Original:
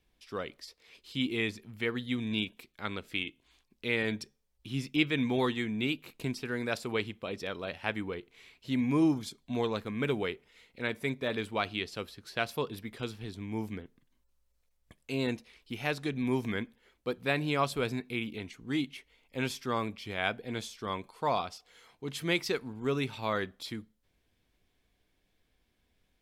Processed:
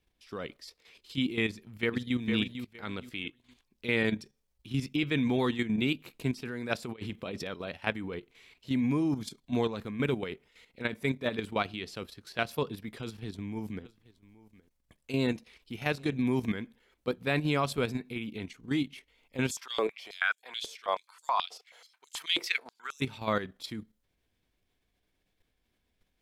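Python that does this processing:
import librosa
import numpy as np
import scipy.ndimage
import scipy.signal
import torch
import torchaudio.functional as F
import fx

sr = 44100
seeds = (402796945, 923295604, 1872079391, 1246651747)

y = fx.echo_throw(x, sr, start_s=1.47, length_s=0.71, ms=460, feedback_pct=25, wet_db=-6.0)
y = fx.over_compress(y, sr, threshold_db=-38.0, ratio=-0.5, at=(6.82, 7.49), fade=0.02)
y = fx.echo_single(y, sr, ms=822, db=-20.5, at=(13.76, 16.63), fade=0.02)
y = fx.filter_held_highpass(y, sr, hz=9.3, low_hz=440.0, high_hz=7100.0, at=(19.5, 23.0), fade=0.02)
y = fx.dynamic_eq(y, sr, hz=180.0, q=0.95, threshold_db=-44.0, ratio=4.0, max_db=4)
y = fx.level_steps(y, sr, step_db=10)
y = F.gain(torch.from_numpy(y), 3.0).numpy()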